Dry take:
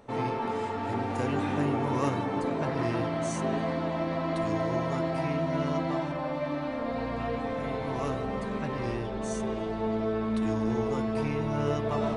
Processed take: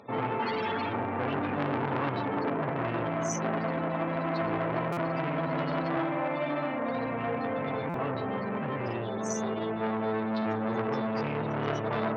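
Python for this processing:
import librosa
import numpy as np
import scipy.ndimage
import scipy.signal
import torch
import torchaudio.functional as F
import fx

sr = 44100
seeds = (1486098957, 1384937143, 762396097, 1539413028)

y = fx.clip_1bit(x, sr, at=(0.42, 0.95))
y = scipy.signal.sosfilt(scipy.signal.butter(4, 97.0, 'highpass', fs=sr, output='sos'), y)
y = fx.quant_dither(y, sr, seeds[0], bits=10, dither='none')
y = fx.spec_topn(y, sr, count=64)
y = fx.peak_eq(y, sr, hz=4800.0, db=13.5, octaves=1.1)
y = fx.room_flutter(y, sr, wall_m=10.9, rt60_s=0.69, at=(5.9, 6.78))
y = fx.buffer_glitch(y, sr, at_s=(4.92, 7.89), block=256, repeats=8)
y = fx.transformer_sat(y, sr, knee_hz=1500.0)
y = F.gain(torch.from_numpy(y), 2.5).numpy()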